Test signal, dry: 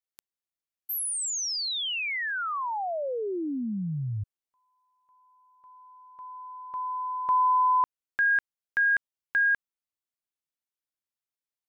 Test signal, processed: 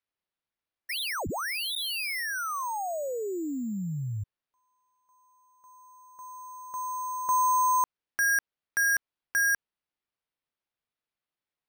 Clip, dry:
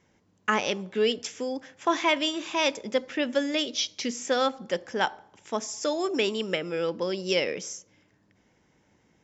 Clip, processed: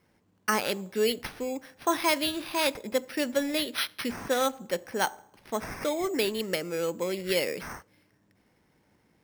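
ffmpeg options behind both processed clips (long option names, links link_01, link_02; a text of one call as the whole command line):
ffmpeg -i in.wav -af "acrusher=samples=6:mix=1:aa=0.000001,volume=-1.5dB" out.wav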